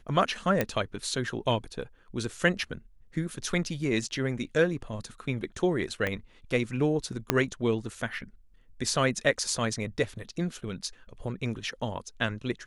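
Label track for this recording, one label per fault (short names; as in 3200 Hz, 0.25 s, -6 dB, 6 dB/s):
0.610000	0.610000	pop -11 dBFS
6.070000	6.070000	pop -16 dBFS
7.300000	7.300000	pop -7 dBFS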